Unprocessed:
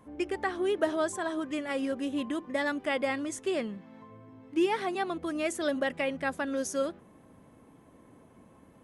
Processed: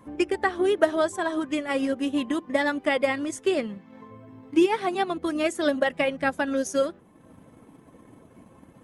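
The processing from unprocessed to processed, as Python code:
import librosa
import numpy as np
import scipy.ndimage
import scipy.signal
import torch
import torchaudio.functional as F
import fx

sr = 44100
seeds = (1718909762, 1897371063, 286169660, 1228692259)

y = fx.spec_quant(x, sr, step_db=15)
y = fx.transient(y, sr, attack_db=3, sustain_db=-5)
y = F.gain(torch.from_numpy(y), 5.5).numpy()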